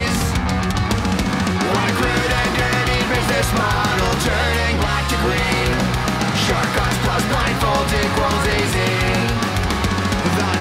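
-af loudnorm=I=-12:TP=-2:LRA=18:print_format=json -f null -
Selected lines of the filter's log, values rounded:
"input_i" : "-18.0",
"input_tp" : "-6.3",
"input_lra" : "0.7",
"input_thresh" : "-28.0",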